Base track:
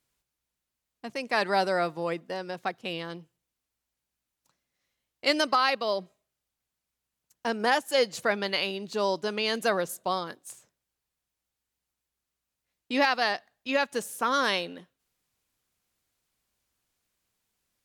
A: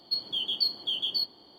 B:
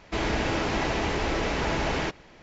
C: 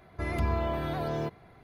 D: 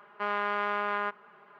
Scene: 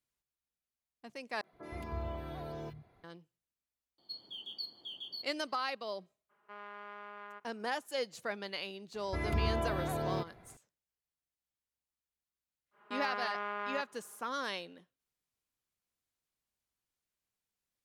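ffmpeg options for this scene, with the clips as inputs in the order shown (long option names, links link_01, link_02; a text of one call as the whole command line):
ffmpeg -i bed.wav -i cue0.wav -i cue1.wav -i cue2.wav -i cue3.wav -filter_complex "[3:a]asplit=2[link_01][link_02];[4:a]asplit=2[link_03][link_04];[0:a]volume=-12dB[link_05];[link_01]acrossover=split=170|1600[link_06][link_07][link_08];[link_08]adelay=30[link_09];[link_06]adelay=120[link_10];[link_10][link_07][link_09]amix=inputs=3:normalize=0[link_11];[link_05]asplit=2[link_12][link_13];[link_12]atrim=end=1.414[link_14];[link_11]atrim=end=1.63,asetpts=PTS-STARTPTS,volume=-10.5dB[link_15];[link_13]atrim=start=3.036[link_16];[1:a]atrim=end=1.58,asetpts=PTS-STARTPTS,volume=-15dB,afade=type=in:duration=0.004:curve=hsin,afade=type=out:start_time=1.576:duration=0.004:curve=hsin,adelay=3980[link_17];[link_03]atrim=end=1.59,asetpts=PTS-STARTPTS,volume=-18dB,afade=type=in:duration=0.02,afade=type=out:start_time=1.57:duration=0.02,adelay=6290[link_18];[link_02]atrim=end=1.63,asetpts=PTS-STARTPTS,volume=-3.5dB,afade=type=in:duration=0.004:curve=hsin,afade=type=out:start_time=1.626:duration=0.004:curve=hsin,adelay=8940[link_19];[link_04]atrim=end=1.59,asetpts=PTS-STARTPTS,volume=-8dB,afade=type=in:duration=0.1,afade=type=out:start_time=1.49:duration=0.1,adelay=12710[link_20];[link_14][link_15]acrossfade=duration=0.004:curve1=hsin:curve2=hsin[link_21];[link_21][link_16]acrossfade=duration=0.004:curve1=hsin:curve2=hsin[link_22];[link_22][link_17][link_18][link_19][link_20]amix=inputs=5:normalize=0" out.wav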